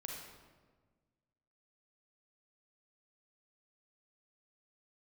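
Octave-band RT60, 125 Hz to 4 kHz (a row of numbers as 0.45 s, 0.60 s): 1.9 s, 1.8 s, 1.6 s, 1.3 s, 1.1 s, 0.90 s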